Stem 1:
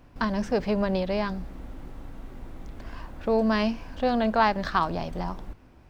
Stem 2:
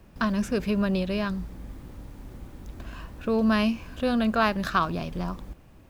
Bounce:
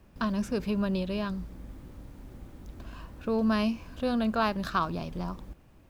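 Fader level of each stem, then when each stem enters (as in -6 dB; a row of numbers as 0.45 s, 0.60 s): -16.5 dB, -5.0 dB; 0.00 s, 0.00 s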